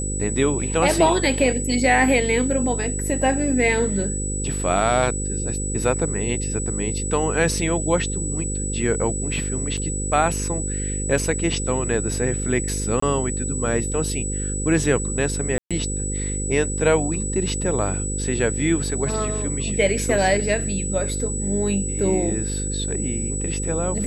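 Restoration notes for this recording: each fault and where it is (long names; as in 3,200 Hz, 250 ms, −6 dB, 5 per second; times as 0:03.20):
mains buzz 50 Hz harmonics 10 −27 dBFS
whistle 7,900 Hz −28 dBFS
0:09.77–0:09.78: drop-out 6.2 ms
0:13.00–0:13.02: drop-out 24 ms
0:15.58–0:15.71: drop-out 126 ms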